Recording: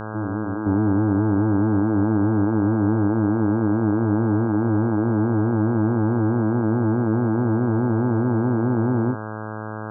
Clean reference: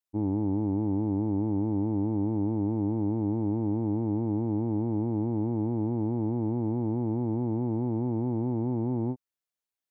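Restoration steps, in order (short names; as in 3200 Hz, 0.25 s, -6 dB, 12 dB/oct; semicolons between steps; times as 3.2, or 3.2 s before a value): de-hum 108 Hz, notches 15; gain 0 dB, from 0.66 s -8 dB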